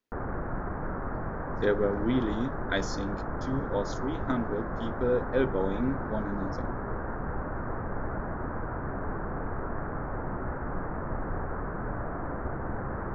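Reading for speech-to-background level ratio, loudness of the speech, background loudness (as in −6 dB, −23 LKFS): 4.0 dB, −31.5 LKFS, −35.5 LKFS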